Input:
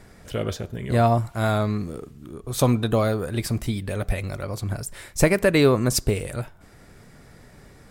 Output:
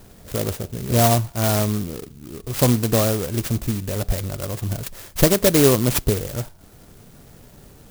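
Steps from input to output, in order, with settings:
converter with an unsteady clock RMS 0.14 ms
level +2.5 dB

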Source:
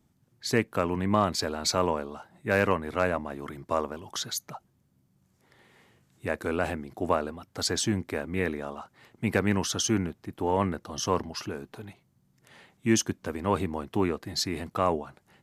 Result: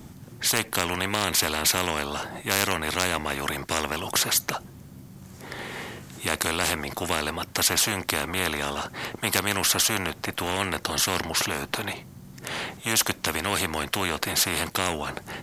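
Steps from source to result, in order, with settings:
every bin compressed towards the loudest bin 4 to 1
level +9 dB

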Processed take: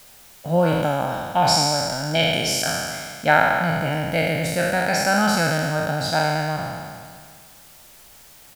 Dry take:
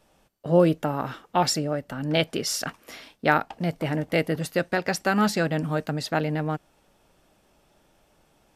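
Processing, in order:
peak hold with a decay on every bin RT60 1.94 s
comb filter 1.3 ms, depth 63%
background noise white −47 dBFS
level −1 dB

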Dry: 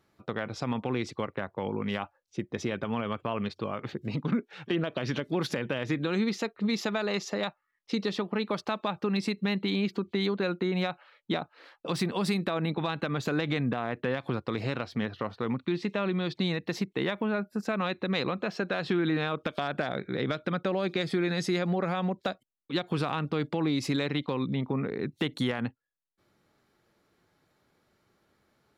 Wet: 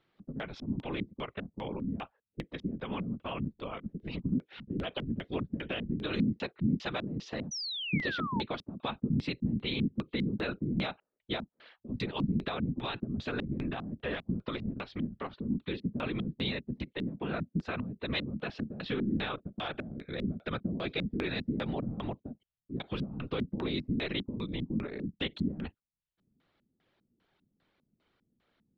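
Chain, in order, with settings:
random phases in short frames
auto-filter low-pass square 2.5 Hz 220–3,300 Hz
sound drawn into the spectrogram fall, 0:07.51–0:08.42, 830–6,100 Hz −31 dBFS
level −6 dB

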